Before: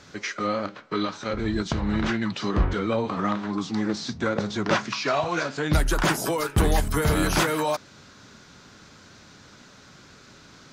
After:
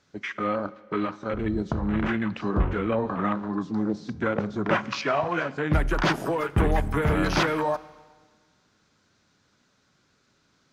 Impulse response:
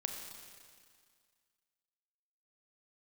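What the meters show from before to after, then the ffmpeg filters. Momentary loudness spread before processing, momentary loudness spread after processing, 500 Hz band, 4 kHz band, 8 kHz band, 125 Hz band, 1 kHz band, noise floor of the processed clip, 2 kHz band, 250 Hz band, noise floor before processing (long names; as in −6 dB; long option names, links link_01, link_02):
6 LU, 6 LU, −0.5 dB, −5.5 dB, −12.0 dB, −1.0 dB, −0.5 dB, −67 dBFS, −1.0 dB, −0.5 dB, −51 dBFS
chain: -filter_complex "[0:a]afwtdn=0.0224,asplit=2[link_01][link_02];[link_02]highpass=52[link_03];[1:a]atrim=start_sample=2205,asetrate=57330,aresample=44100[link_04];[link_03][link_04]afir=irnorm=-1:irlink=0,volume=-10dB[link_05];[link_01][link_05]amix=inputs=2:normalize=0,volume=-2dB"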